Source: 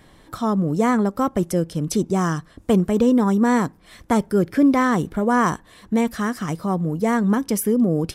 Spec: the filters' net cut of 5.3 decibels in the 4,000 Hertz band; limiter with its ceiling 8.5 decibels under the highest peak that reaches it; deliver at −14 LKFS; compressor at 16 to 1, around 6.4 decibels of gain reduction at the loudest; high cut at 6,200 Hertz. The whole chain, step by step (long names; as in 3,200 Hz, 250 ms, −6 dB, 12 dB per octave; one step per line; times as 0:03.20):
low-pass filter 6,200 Hz
parametric band 4,000 Hz −6.5 dB
downward compressor 16 to 1, threshold −18 dBFS
level +13.5 dB
brickwall limiter −4.5 dBFS